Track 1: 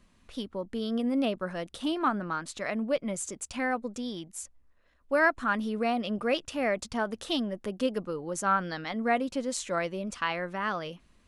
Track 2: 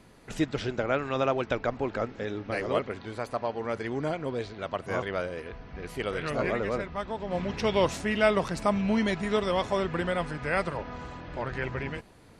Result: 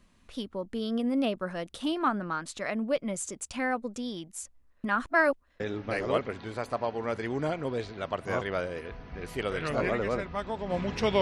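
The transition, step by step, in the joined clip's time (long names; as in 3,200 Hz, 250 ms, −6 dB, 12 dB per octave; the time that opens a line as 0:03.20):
track 1
0:04.84–0:05.60: reverse
0:05.60: continue with track 2 from 0:02.21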